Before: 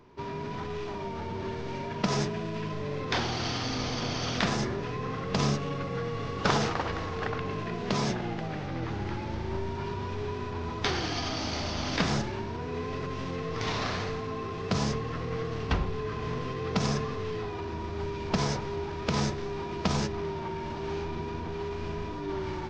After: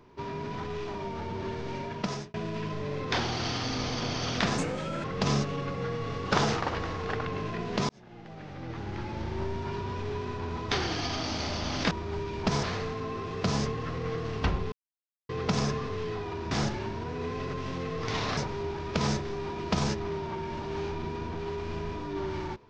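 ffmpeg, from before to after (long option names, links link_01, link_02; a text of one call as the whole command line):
ffmpeg -i in.wav -filter_complex "[0:a]asplit=11[link_01][link_02][link_03][link_04][link_05][link_06][link_07][link_08][link_09][link_10][link_11];[link_01]atrim=end=2.34,asetpts=PTS-STARTPTS,afade=type=out:start_time=1.68:duration=0.66:curve=qsin[link_12];[link_02]atrim=start=2.34:end=4.584,asetpts=PTS-STARTPTS,afade=type=in:duration=0.004:curve=hsin[link_13];[link_03]atrim=start=4.58:end=5.17,asetpts=PTS-STARTPTS,asetrate=56448,aresample=44100,atrim=end_sample=20327,asetpts=PTS-STARTPTS[link_14];[link_04]atrim=start=5.166:end=8.02,asetpts=PTS-STARTPTS,afade=type=out:start_time=2.85:duration=0.004:curve=hsin[link_15];[link_05]atrim=start=8.02:end=12.042,asetpts=PTS-STARTPTS,afade=type=in:duration=1.41[link_16];[link_06]atrim=start=17.778:end=18.502[link_17];[link_07]atrim=start=13.898:end=15.99,asetpts=PTS-STARTPTS,afade=type=out:start_time=2.088:duration=0.004:curve=hsin[link_18];[link_08]atrim=start=15.99:end=16.56,asetpts=PTS-STARTPTS,volume=0[link_19];[link_09]atrim=start=16.56:end=17.782,asetpts=PTS-STARTPTS,afade=type=in:duration=0.004:curve=hsin[link_20];[link_10]atrim=start=12.038:end=13.902[link_21];[link_11]atrim=start=18.498[link_22];[link_12][link_13]concat=n=2:v=0:a=1[link_23];[link_23][link_14]acrossfade=duration=0.004:curve1=hsin:curve2=hsin[link_24];[link_15][link_16]concat=n=2:v=0:a=1[link_25];[link_24][link_25]acrossfade=duration=0.004:curve1=hsin:curve2=hsin[link_26];[link_26][link_17]acrossfade=duration=0.004:curve1=hsin:curve2=hsin[link_27];[link_18][link_19][link_20]concat=n=3:v=0:a=1[link_28];[link_27][link_28]acrossfade=duration=0.004:curve1=hsin:curve2=hsin[link_29];[link_29][link_21]acrossfade=duration=0.004:curve1=hsin:curve2=hsin[link_30];[link_30][link_22]acrossfade=duration=0.004:curve1=hsin:curve2=hsin" out.wav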